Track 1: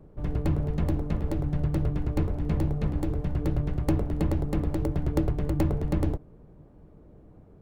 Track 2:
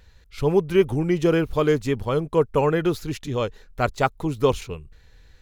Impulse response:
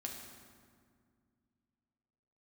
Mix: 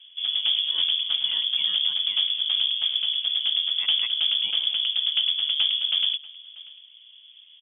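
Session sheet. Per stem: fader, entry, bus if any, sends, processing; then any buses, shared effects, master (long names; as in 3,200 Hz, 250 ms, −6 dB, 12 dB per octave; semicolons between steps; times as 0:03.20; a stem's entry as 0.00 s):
0.0 dB, 0.00 s, no send, echo send −21 dB, no processing
−17.0 dB, 0.00 s, muted 0:02.17–0:03.59, no send, no echo send, no processing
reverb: not used
echo: single-tap delay 638 ms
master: voice inversion scrambler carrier 3,400 Hz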